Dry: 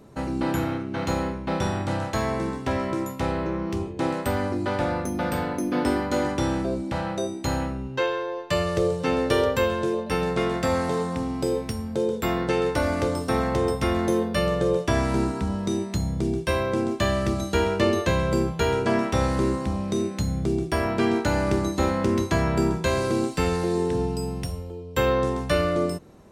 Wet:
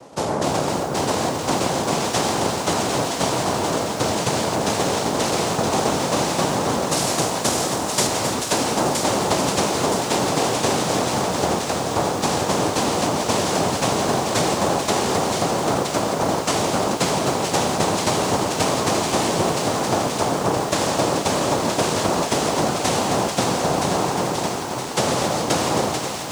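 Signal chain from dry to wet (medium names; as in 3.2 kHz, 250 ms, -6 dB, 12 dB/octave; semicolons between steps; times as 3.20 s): noise-vocoded speech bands 2; 6.86–8.07 s: treble shelf 5.2 kHz +12 dB; compression, threshold -24 dBFS, peak gain reduction 8 dB; feedback echo behind a high-pass 969 ms, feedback 53%, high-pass 1.5 kHz, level -5 dB; bit-crushed delay 266 ms, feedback 80%, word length 7-bit, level -9 dB; trim +6.5 dB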